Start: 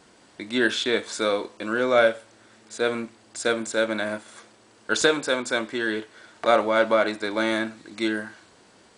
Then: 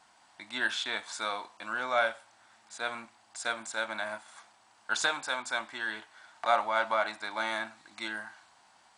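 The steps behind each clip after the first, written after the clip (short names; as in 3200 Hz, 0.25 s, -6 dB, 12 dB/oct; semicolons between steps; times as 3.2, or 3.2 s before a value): resonant low shelf 600 Hz -9.5 dB, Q 3; gain -7 dB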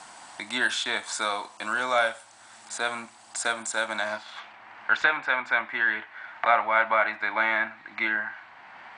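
low-pass sweep 9000 Hz -> 2100 Hz, 3.89–4.59; three-band squash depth 40%; gain +4.5 dB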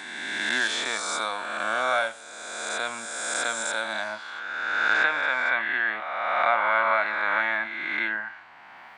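spectral swells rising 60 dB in 2.04 s; gain -4 dB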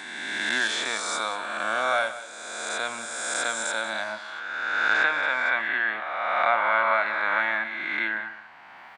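echo 0.186 s -15 dB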